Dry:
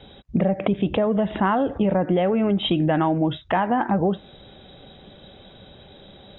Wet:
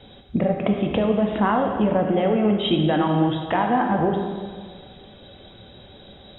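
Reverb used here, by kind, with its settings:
dense smooth reverb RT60 1.8 s, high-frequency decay 1×, DRR 2.5 dB
level −1 dB

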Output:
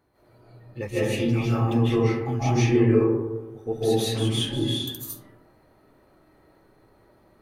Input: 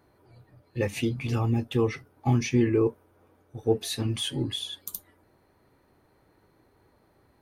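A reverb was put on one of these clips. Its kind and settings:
comb and all-pass reverb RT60 1.1 s, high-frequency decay 0.35×, pre-delay 115 ms, DRR −10 dB
level −5.5 dB

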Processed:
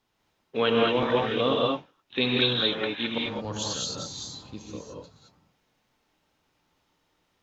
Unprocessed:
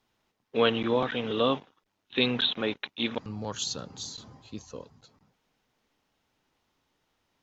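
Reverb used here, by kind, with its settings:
reverb whose tail is shaped and stops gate 240 ms rising, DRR −2.5 dB
level −1 dB

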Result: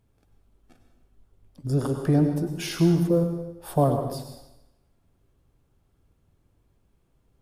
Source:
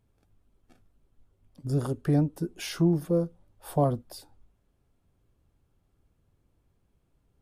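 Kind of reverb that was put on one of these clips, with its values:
dense smooth reverb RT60 0.93 s, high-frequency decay 0.9×, pre-delay 85 ms, DRR 5.5 dB
level +3 dB

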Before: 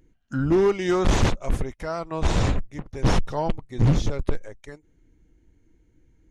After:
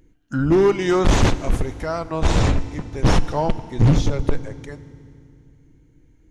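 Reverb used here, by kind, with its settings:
feedback delay network reverb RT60 2.4 s, low-frequency decay 1.45×, high-frequency decay 0.95×, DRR 14 dB
level +4 dB

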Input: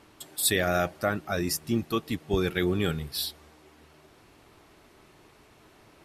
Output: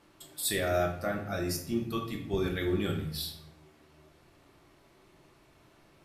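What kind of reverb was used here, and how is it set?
rectangular room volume 130 cubic metres, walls mixed, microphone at 0.83 metres
level −8 dB

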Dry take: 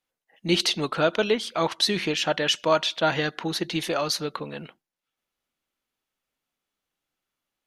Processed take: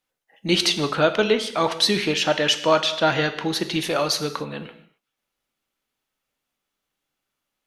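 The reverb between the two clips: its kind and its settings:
reverb whose tail is shaped and stops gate 300 ms falling, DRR 8.5 dB
level +3 dB

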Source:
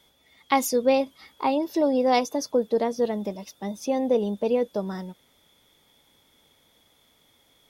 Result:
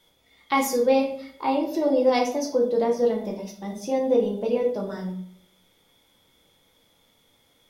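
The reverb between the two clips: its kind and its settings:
rectangular room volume 79 cubic metres, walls mixed, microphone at 0.77 metres
level −3.5 dB

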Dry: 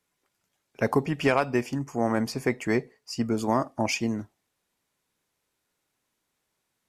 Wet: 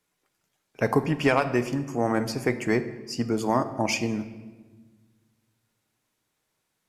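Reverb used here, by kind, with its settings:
rectangular room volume 1,100 cubic metres, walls mixed, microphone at 0.52 metres
level +1 dB

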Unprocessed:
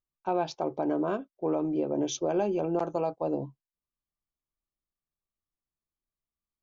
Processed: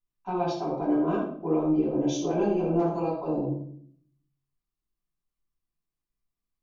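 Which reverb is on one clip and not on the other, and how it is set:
rectangular room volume 820 cubic metres, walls furnished, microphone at 9.6 metres
level −10 dB

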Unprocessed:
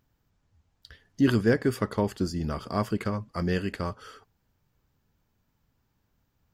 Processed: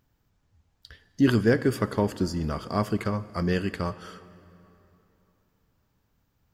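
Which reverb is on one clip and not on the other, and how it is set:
dense smooth reverb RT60 3.2 s, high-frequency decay 0.75×, DRR 15.5 dB
level +1.5 dB

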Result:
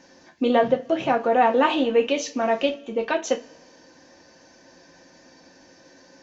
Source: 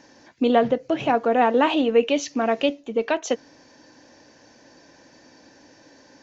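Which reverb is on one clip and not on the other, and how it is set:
coupled-rooms reverb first 0.21 s, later 1.6 s, from −27 dB, DRR 2.5 dB
level −2 dB

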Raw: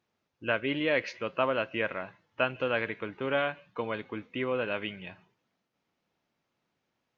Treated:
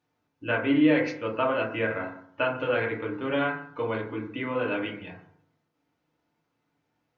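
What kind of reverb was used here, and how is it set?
feedback delay network reverb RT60 0.6 s, low-frequency decay 1.3×, high-frequency decay 0.25×, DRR −2.5 dB
level −2 dB

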